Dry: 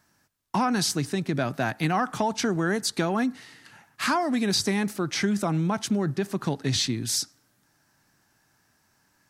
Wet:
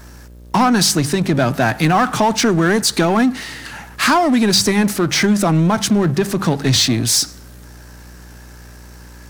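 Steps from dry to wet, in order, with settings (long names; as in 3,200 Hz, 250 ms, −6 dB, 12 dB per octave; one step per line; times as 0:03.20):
hum with harmonics 60 Hz, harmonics 10, −61 dBFS −7 dB per octave
power curve on the samples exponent 0.7
hum removal 48.67 Hz, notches 4
level +8 dB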